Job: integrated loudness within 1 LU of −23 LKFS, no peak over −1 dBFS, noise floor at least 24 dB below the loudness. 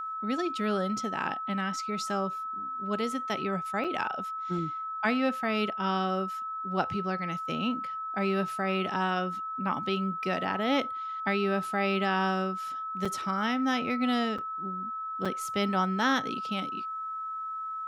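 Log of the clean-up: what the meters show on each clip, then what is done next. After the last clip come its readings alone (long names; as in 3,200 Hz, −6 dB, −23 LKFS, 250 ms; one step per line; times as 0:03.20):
number of dropouts 4; longest dropout 5.4 ms; interfering tone 1,300 Hz; level of the tone −33 dBFS; integrated loudness −30.5 LKFS; sample peak −12.5 dBFS; target loudness −23.0 LKFS
→ repair the gap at 0:03.84/0:13.05/0:14.38/0:15.25, 5.4 ms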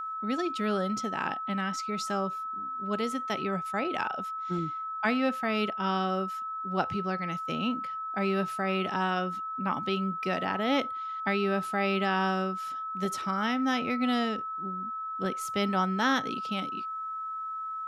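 number of dropouts 0; interfering tone 1,300 Hz; level of the tone −33 dBFS
→ notch filter 1,300 Hz, Q 30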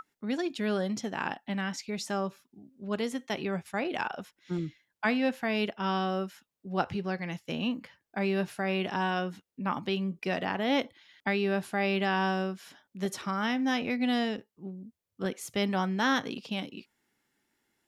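interfering tone none found; integrated loudness −31.5 LKFS; sample peak −12.5 dBFS; target loudness −23.0 LKFS
→ level +8.5 dB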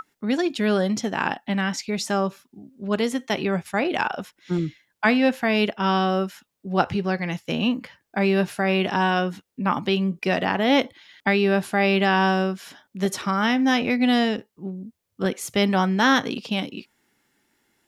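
integrated loudness −23.0 LKFS; sample peak −4.0 dBFS; background noise floor −78 dBFS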